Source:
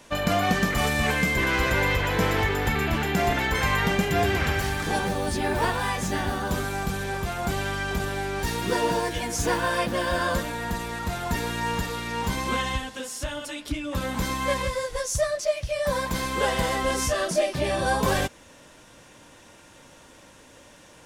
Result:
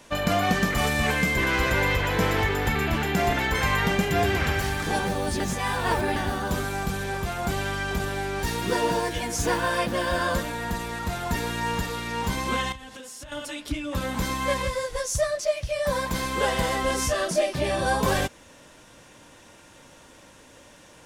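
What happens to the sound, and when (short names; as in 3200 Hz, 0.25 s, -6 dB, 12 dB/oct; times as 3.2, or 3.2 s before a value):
5.4–6.16 reverse
12.72–13.32 compressor 10:1, threshold -37 dBFS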